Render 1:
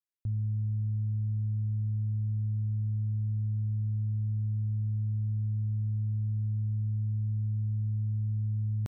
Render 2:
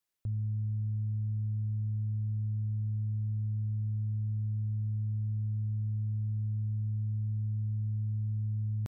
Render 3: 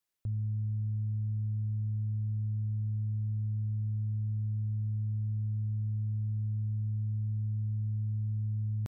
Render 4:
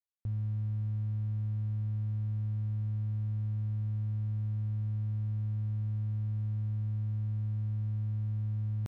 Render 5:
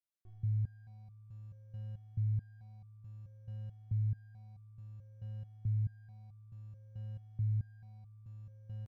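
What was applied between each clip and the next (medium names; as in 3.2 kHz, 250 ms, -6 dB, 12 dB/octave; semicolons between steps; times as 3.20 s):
peak limiter -37 dBFS, peak gain reduction 10 dB; trim +8 dB
no audible change
crossover distortion -56.5 dBFS
reverse bouncing-ball echo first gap 20 ms, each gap 1.25×, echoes 5; resonator arpeggio 4.6 Hz 76–1200 Hz; trim +2.5 dB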